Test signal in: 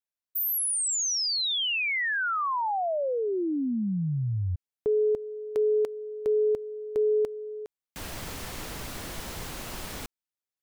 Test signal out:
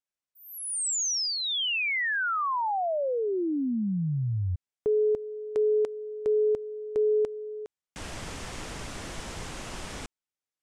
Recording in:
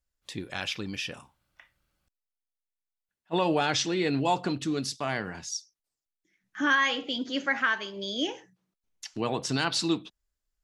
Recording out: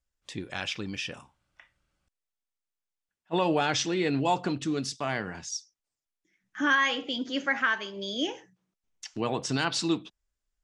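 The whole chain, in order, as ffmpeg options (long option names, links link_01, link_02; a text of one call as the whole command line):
ffmpeg -i in.wav -af "lowpass=frequency=9100:width=0.5412,lowpass=frequency=9100:width=1.3066,equalizer=frequency=4200:width_type=o:width=0.34:gain=-3.5" out.wav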